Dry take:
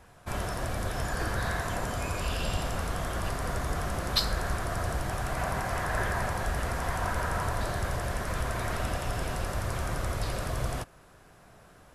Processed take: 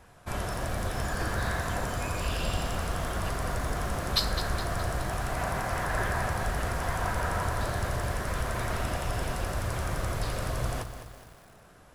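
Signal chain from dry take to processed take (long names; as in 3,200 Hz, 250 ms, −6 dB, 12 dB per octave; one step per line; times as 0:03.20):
feedback echo at a low word length 209 ms, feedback 55%, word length 8 bits, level −10 dB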